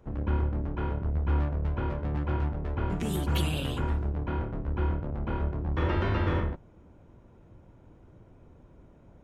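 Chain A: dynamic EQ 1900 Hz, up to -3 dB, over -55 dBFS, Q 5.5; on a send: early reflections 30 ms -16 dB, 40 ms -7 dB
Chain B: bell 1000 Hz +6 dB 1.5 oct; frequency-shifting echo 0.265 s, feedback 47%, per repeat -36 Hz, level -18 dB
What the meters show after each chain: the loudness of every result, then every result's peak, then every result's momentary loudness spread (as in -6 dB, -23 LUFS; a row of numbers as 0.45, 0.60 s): -28.5, -29.5 LUFS; -15.0, -14.5 dBFS; 5, 5 LU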